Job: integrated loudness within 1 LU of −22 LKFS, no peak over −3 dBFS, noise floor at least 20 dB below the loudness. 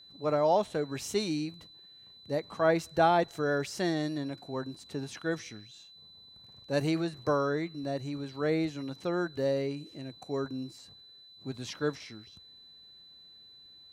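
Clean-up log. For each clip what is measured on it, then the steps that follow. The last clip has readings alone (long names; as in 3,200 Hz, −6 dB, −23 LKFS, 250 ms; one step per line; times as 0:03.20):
interfering tone 4,000 Hz; level of the tone −52 dBFS; integrated loudness −31.5 LKFS; sample peak −13.0 dBFS; target loudness −22.0 LKFS
→ notch filter 4,000 Hz, Q 30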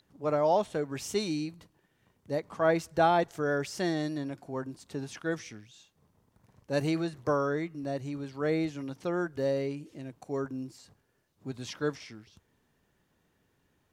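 interfering tone none found; integrated loudness −31.5 LKFS; sample peak −13.0 dBFS; target loudness −22.0 LKFS
→ level +9.5 dB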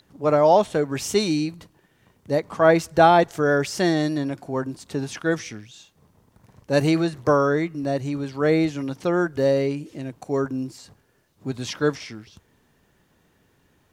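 integrated loudness −22.0 LKFS; sample peak −3.5 dBFS; background noise floor −63 dBFS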